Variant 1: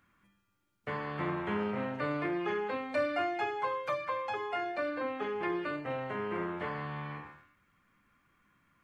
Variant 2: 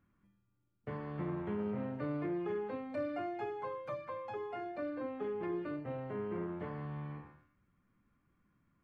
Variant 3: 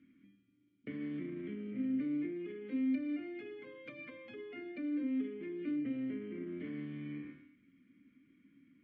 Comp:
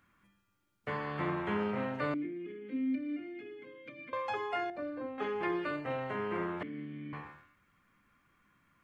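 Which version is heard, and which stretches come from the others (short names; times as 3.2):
1
2.14–4.13 from 3
4.7–5.18 from 2
6.63–7.13 from 3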